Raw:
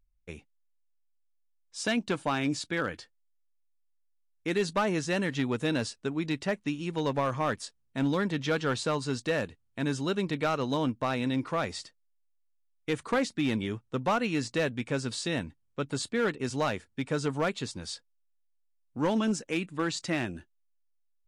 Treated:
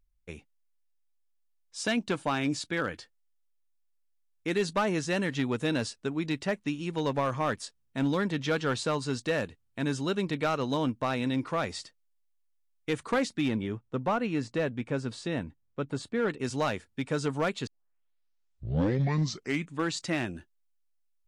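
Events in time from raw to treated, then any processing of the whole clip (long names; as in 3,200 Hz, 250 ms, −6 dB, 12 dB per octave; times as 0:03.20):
0:13.48–0:16.30: high-shelf EQ 2,600 Hz −11 dB
0:17.67: tape start 2.16 s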